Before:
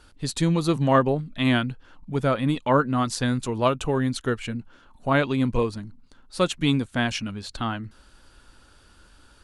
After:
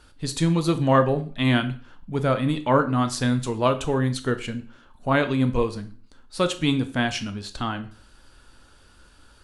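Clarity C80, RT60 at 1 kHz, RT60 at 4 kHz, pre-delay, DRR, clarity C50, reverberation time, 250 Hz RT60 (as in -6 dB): 19.0 dB, 0.45 s, 0.40 s, 6 ms, 9.0 dB, 14.5 dB, 0.40 s, 0.40 s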